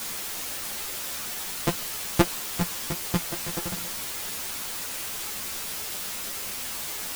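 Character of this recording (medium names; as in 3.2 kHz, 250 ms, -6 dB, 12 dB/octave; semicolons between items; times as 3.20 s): a buzz of ramps at a fixed pitch in blocks of 256 samples; chopped level 2.3 Hz, depth 60%, duty 60%; a quantiser's noise floor 6-bit, dither triangular; a shimmering, thickened sound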